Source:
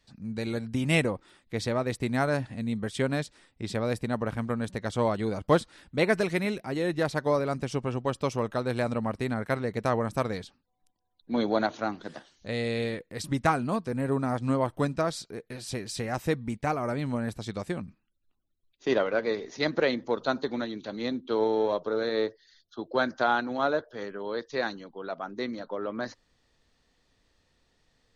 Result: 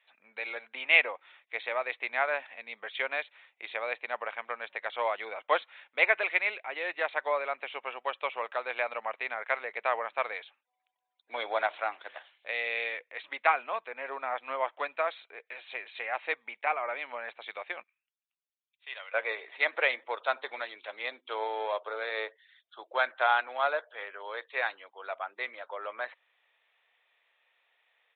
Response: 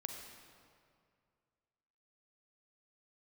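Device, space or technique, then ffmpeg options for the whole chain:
musical greeting card: -filter_complex "[0:a]asettb=1/sr,asplit=3[a][b][c];[a]atrim=end=17.834[d];[b]atrim=start=17.83:end=19.14,asetpts=PTS-STARTPTS,afade=t=in:d=0.004:c=qsin,afade=t=out:st=1.306:d=0.004:c=qsin,aderivative[e];[c]atrim=start=19.136[f];[d][e]acrossfade=d=0.004:c1=hsin:c2=qsin[g];[g][f]acrossfade=d=0.004:c1=qsin:c2=hsin,aresample=8000,aresample=44100,highpass=f=620:w=0.5412,highpass=f=620:w=1.3066,equalizer=f=2.3k:t=o:w=0.52:g=9.5"

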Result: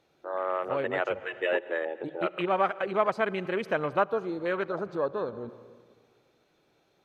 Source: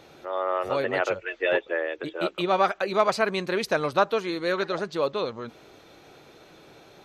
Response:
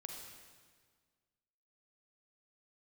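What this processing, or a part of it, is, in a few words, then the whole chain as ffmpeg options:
ducked reverb: -filter_complex "[0:a]afwtdn=0.0251,asettb=1/sr,asplit=3[a][b][c];[a]atrim=end=1.854[d];[b]atrim=start=1.85:end=2.49,asetpts=PTS-STARTPTS,afade=t=in:d=0.004:c=qsin,afade=t=out:st=0.636:d=0.004:c=qsin,equalizer=f=1.7k:w=0.64:g=5[e];[c]atrim=start=2.486[f];[d][e]acrossfade=d=0.004:c1=hsin:c2=qsin[g];[g][f]acrossfade=d=0.004:c1=qsin:c2=hsin,asplit=3[h][i][j];[1:a]atrim=start_sample=2205[k];[i][k]afir=irnorm=-1:irlink=0[l];[j]apad=whole_len=310586[m];[l][m]sidechaincompress=threshold=-34dB:ratio=8:attack=6.2:release=131,volume=-3dB[n];[h][n]amix=inputs=2:normalize=0,volume=-4dB"

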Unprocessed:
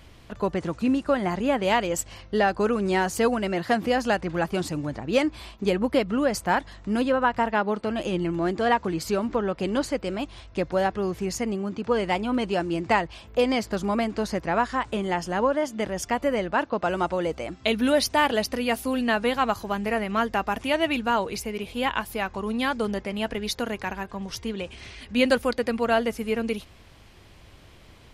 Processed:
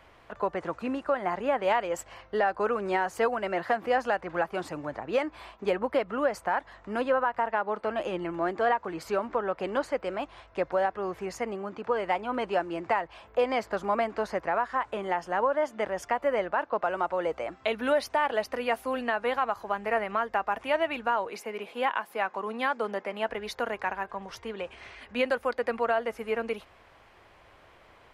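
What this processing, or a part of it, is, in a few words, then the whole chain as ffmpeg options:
DJ mixer with the lows and highs turned down: -filter_complex "[0:a]asettb=1/sr,asplit=3[a][b][c];[a]atrim=end=21.294[d];[b]atrim=start=21.29:end=23.29,asetpts=PTS-STARTPTS,afade=t=in:d=0.004:c=qsin,afade=t=out:st=1.996:d=0.004:c=qsin,highpass=f=170:w=0.5412,highpass=f=170:w=1.3066[e];[c]atrim=start=23.286[f];[d][e]acrossfade=d=0.004:c1=hsin:c2=qsin[g];[g][f]acrossfade=d=0.004:c1=qsin:c2=hsin,acrossover=split=470 2100:gain=0.158 1 0.178[h][i][j];[h][i][j]amix=inputs=3:normalize=0,alimiter=limit=-19dB:level=0:latency=1:release=244,volume=3dB"

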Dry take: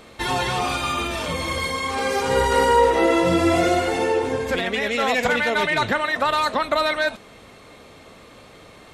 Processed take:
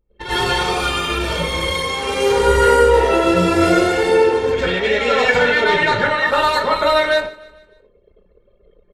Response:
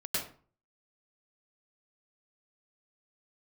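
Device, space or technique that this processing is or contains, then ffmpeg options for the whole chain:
microphone above a desk: -filter_complex "[0:a]aecho=1:1:2.2:0.52[a];[1:a]atrim=start_sample=2205[b];[a][b]afir=irnorm=-1:irlink=0,asettb=1/sr,asplit=3[c][d][e];[c]atrim=end=4.524[f];[d]atrim=start=4.52:end=6.27,asetpts=PTS-STARTPTS,afade=t=in:d=0.004:c=qsin,afade=t=out:st=1.746:d=0.004:c=qsin,lowpass=7k[g];[e]atrim=start=6.266[h];[f][g]acrossfade=d=0.004:c1=hsin:c2=qsin[i];[i][h]acrossfade=d=0.004:c1=qsin:c2=hsin,anlmdn=63.1,aecho=1:1:150|300|450|600:0.0891|0.0455|0.0232|0.0118,volume=-1dB"

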